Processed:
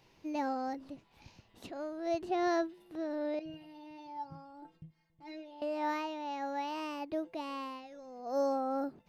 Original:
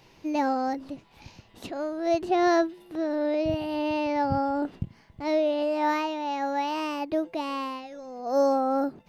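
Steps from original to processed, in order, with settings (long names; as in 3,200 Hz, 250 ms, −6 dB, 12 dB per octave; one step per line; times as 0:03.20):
0:03.39–0:05.62: stiff-string resonator 160 Hz, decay 0.22 s, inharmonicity 0.008
level −9 dB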